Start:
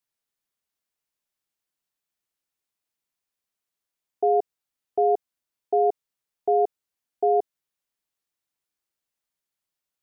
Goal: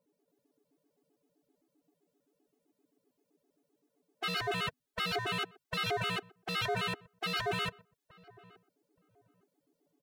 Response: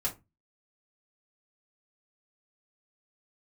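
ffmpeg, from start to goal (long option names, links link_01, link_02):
-filter_complex "[0:a]bandreject=frequency=50:width_type=h:width=6,bandreject=frequency=100:width_type=h:width=6,bandreject=frequency=150:width_type=h:width=6,bandreject=frequency=200:width_type=h:width=6,bandreject=frequency=250:width_type=h:width=6,aecho=1:1:7:0.94,acrossover=split=260|380[link_01][link_02][link_03];[link_02]acompressor=mode=upward:threshold=-43dB:ratio=2.5[link_04];[link_01][link_04][link_03]amix=inputs=3:normalize=0,aecho=1:1:134.1|279.9:0.355|0.891,aeval=exprs='0.0841*(abs(mod(val(0)/0.0841+3,4)-2)-1)':channel_layout=same,asplit=2[link_05][link_06];[link_06]adelay=873,lowpass=frequency=850:poles=1,volume=-19.5dB,asplit=2[link_07][link_08];[link_08]adelay=873,lowpass=frequency=850:poles=1,volume=0.24[link_09];[link_05][link_07][link_09]amix=inputs=3:normalize=0,afftfilt=real='re*gt(sin(2*PI*7.7*pts/sr)*(1-2*mod(floor(b*sr/1024/220),2)),0)':imag='im*gt(sin(2*PI*7.7*pts/sr)*(1-2*mod(floor(b*sr/1024/220),2)),0)':win_size=1024:overlap=0.75,volume=-3.5dB"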